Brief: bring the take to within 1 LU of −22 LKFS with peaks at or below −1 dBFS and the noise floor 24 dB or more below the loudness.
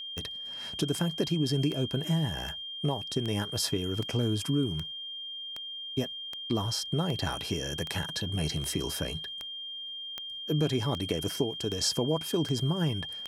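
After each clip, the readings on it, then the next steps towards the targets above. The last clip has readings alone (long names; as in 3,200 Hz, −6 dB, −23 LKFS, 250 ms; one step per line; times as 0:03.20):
number of clicks 18; interfering tone 3,200 Hz; level of the tone −37 dBFS; integrated loudness −31.0 LKFS; sample peak −14.5 dBFS; target loudness −22.0 LKFS
→ click removal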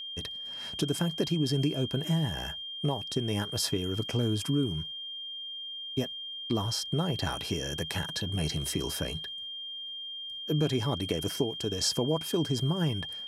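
number of clicks 0; interfering tone 3,200 Hz; level of the tone −37 dBFS
→ notch filter 3,200 Hz, Q 30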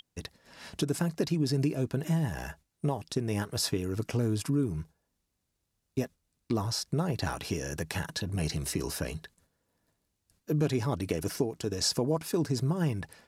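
interfering tone none found; integrated loudness −31.5 LKFS; sample peak −15.0 dBFS; target loudness −22.0 LKFS
→ level +9.5 dB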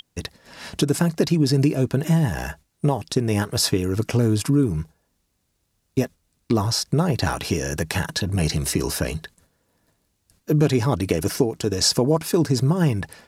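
integrated loudness −22.0 LKFS; sample peak −5.5 dBFS; background noise floor −72 dBFS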